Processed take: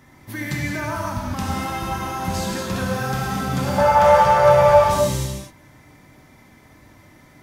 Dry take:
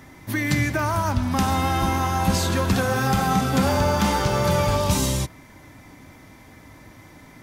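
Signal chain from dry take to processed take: 3.78–4.84 s: FFT filter 170 Hz 0 dB, 270 Hz -17 dB, 580 Hz +14 dB, 1.9 kHz +8 dB, 4 kHz -2 dB; gated-style reverb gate 270 ms flat, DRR -1.5 dB; trim -6.5 dB

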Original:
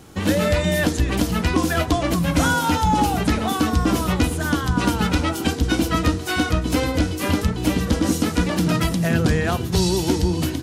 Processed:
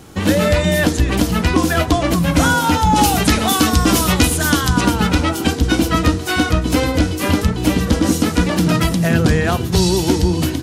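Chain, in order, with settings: 2.96–4.81 s: treble shelf 2.6 kHz +9.5 dB; trim +4.5 dB

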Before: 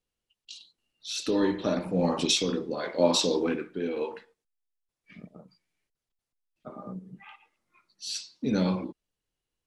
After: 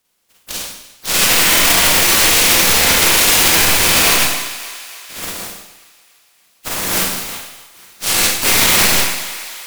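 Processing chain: spectral contrast reduction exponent 0.12; dynamic bell 2.3 kHz, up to +8 dB, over -45 dBFS, Q 1.3; in parallel at -4 dB: integer overflow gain 20.5 dB; on the sum: Chebyshev shaper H 8 -9 dB, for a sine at -6 dBFS; on a send: thinning echo 291 ms, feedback 57%, high-pass 420 Hz, level -21 dB; on the sum: Schroeder reverb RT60 0.78 s, combs from 33 ms, DRR -5 dB; loudness maximiser +12.5 dB; trim -1 dB

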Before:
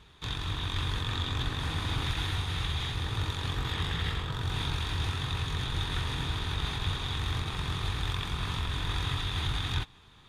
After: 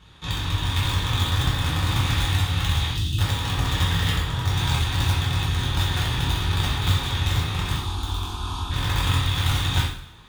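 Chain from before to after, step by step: 7.76–8.71 s: static phaser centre 530 Hz, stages 6; in parallel at -6 dB: bit crusher 4-bit; 2.91–3.19 s: on the sum: spectral selection erased 370–2500 Hz; two-slope reverb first 0.59 s, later 1.8 s, from -23 dB, DRR -5.5 dB

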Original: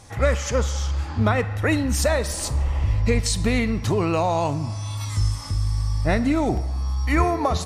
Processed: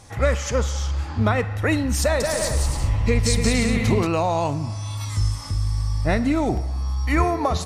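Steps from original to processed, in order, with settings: 2.02–4.07 s: bouncing-ball echo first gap 180 ms, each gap 0.6×, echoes 5

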